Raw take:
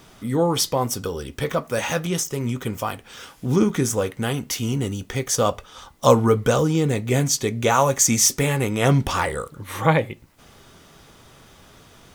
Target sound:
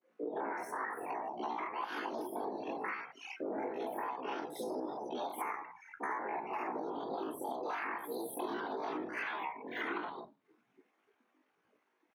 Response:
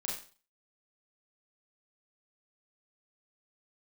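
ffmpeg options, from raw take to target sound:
-filter_complex "[0:a]dynaudnorm=f=420:g=9:m=5dB,alimiter=limit=-12.5dB:level=0:latency=1:release=115[a];[1:a]atrim=start_sample=2205,asetrate=35280,aresample=44100[b];[a][b]afir=irnorm=-1:irlink=0,afftfilt=real='hypot(re,im)*cos(2*PI*random(0))':imag='hypot(re,im)*sin(2*PI*random(1))':win_size=512:overlap=0.75,afftdn=nr=26:nf=-36,adynamicequalizer=threshold=0.00562:dfrequency=8900:dqfactor=1.1:tfrequency=8900:tqfactor=1.1:attack=5:release=100:ratio=0.375:range=1.5:mode=cutabove:tftype=bell,highpass=120,asetrate=78577,aresample=44100,atempo=0.561231,acrossover=split=260 2600:gain=0.141 1 0.1[c][d][e];[c][d][e]amix=inputs=3:normalize=0,bandreject=f=560:w=15,acrossover=split=170|580[f][g][h];[h]adelay=30[i];[f]adelay=70[j];[j][g][i]amix=inputs=3:normalize=0,acompressor=threshold=-42dB:ratio=10,volume=6dB"

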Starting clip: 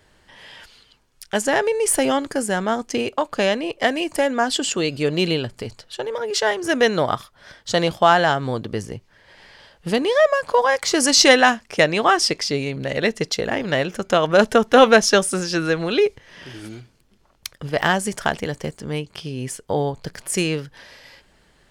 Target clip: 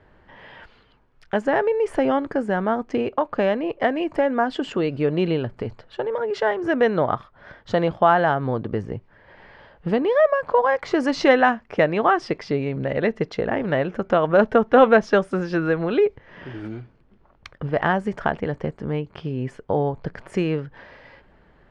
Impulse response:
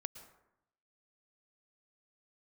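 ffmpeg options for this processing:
-filter_complex "[0:a]lowpass=1.6k,asplit=2[a][b];[b]acompressor=threshold=-28dB:ratio=6,volume=0dB[c];[a][c]amix=inputs=2:normalize=0,volume=-2.5dB"

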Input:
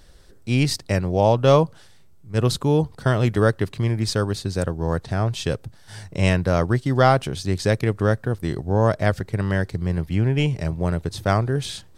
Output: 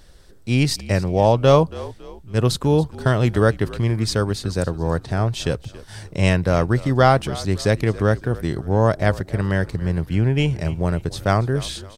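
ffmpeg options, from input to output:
-filter_complex "[0:a]asplit=4[a][b][c][d];[b]adelay=278,afreqshift=-50,volume=-18dB[e];[c]adelay=556,afreqshift=-100,volume=-25.7dB[f];[d]adelay=834,afreqshift=-150,volume=-33.5dB[g];[a][e][f][g]amix=inputs=4:normalize=0,volume=1.5dB"

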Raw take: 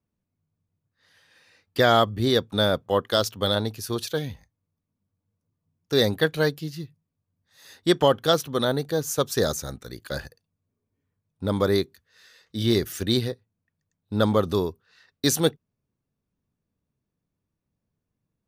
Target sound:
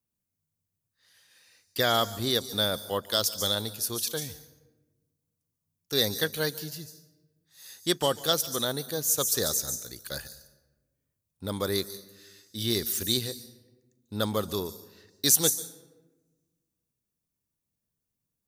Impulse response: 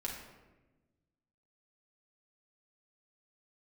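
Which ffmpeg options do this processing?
-filter_complex "[0:a]crystalizer=i=4:c=0,asplit=2[a][b];[b]highshelf=f=4.2k:t=q:w=1.5:g=13.5[c];[1:a]atrim=start_sample=2205,adelay=143[d];[c][d]afir=irnorm=-1:irlink=0,volume=-18.5dB[e];[a][e]amix=inputs=2:normalize=0,volume=-8.5dB"

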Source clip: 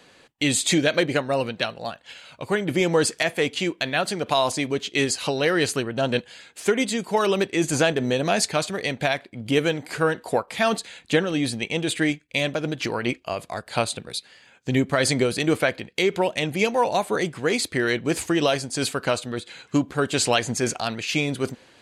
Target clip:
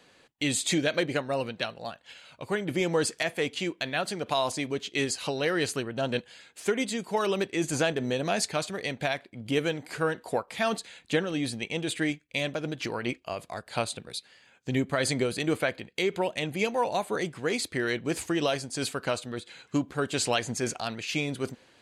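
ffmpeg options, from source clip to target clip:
-filter_complex "[0:a]asettb=1/sr,asplit=3[a][b][c];[a]atrim=end=14.834[d];[b]atrim=start=14.83:end=17.1,asetpts=PTS-STARTPTS,afade=t=in:d=0.004:c=qsin,afade=t=out:st=2.266:d=0.004:c=qsin,bandreject=f=5.5k:w=8.9[e];[c]atrim=start=17.096[f];[d][e]acrossfade=d=0.004:c1=hsin:c2=qsin[g];[g][f]acrossfade=d=0.004:c1=qsin:c2=hsin,volume=-6dB"

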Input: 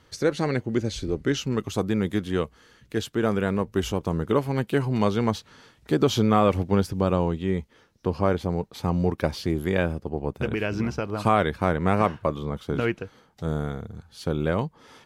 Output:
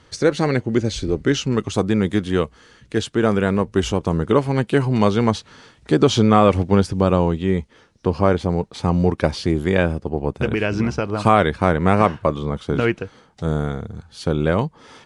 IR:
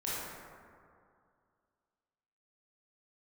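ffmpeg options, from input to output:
-af "aresample=22050,aresample=44100,volume=6dB"

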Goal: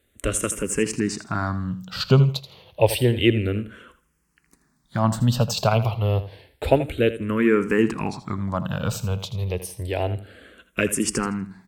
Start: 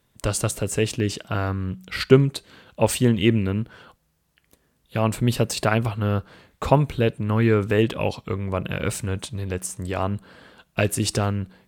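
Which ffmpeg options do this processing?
-filter_complex "[0:a]asplit=2[a][b];[b]aecho=0:1:81|162|243:0.211|0.0507|0.0122[c];[a][c]amix=inputs=2:normalize=0,asplit=2[d][e];[e]afreqshift=-0.29[f];[d][f]amix=inputs=2:normalize=1,volume=3dB"

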